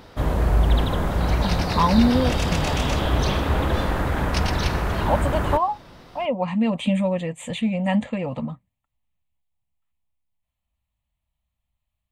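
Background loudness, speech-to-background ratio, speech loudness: -23.5 LUFS, -1.0 dB, -24.5 LUFS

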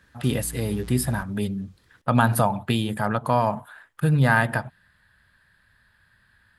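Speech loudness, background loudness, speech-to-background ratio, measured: -24.0 LUFS, -42.0 LUFS, 18.0 dB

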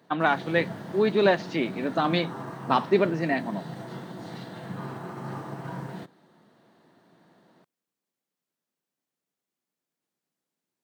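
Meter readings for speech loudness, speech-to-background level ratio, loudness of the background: -25.5 LUFS, 13.0 dB, -38.5 LUFS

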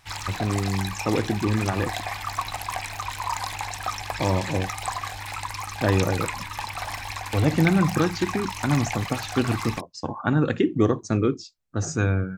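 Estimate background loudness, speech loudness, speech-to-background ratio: -31.0 LUFS, -25.5 LUFS, 5.5 dB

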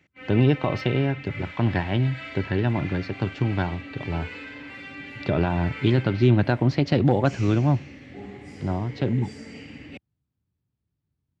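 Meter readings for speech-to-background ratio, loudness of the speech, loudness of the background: 14.5 dB, -24.5 LUFS, -39.0 LUFS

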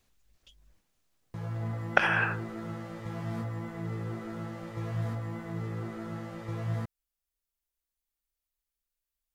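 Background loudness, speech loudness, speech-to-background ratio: -37.0 LUFS, -27.5 LUFS, 9.5 dB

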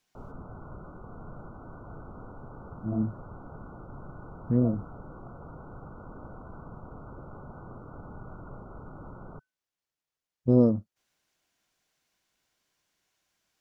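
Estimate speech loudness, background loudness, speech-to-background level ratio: -27.0 LUFS, -46.0 LUFS, 19.0 dB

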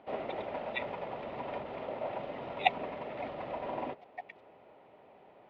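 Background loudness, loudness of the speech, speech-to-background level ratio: -40.0 LUFS, -36.0 LUFS, 4.0 dB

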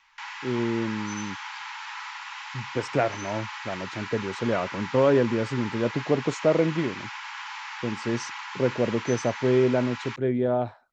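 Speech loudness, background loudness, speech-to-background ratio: -27.0 LUFS, -36.0 LUFS, 9.0 dB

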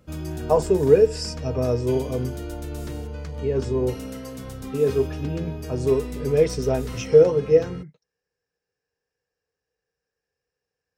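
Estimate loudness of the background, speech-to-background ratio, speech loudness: -34.0 LUFS, 12.0 dB, -22.0 LUFS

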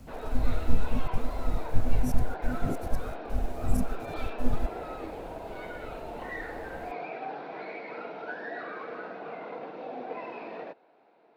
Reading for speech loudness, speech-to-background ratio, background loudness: -35.0 LUFS, 4.0 dB, -39.0 LUFS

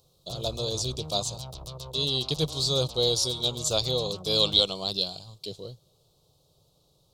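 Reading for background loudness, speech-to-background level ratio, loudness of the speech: -40.0 LUFS, 14.0 dB, -26.0 LUFS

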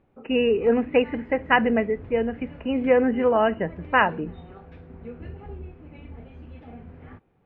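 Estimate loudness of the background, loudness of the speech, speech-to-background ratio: -42.5 LUFS, -22.5 LUFS, 20.0 dB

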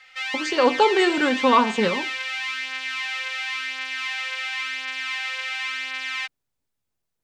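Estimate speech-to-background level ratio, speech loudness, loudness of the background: 7.0 dB, -20.0 LUFS, -27.0 LUFS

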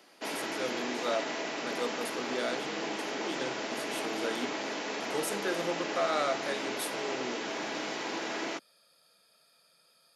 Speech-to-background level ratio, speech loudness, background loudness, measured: -2.0 dB, -37.0 LUFS, -35.0 LUFS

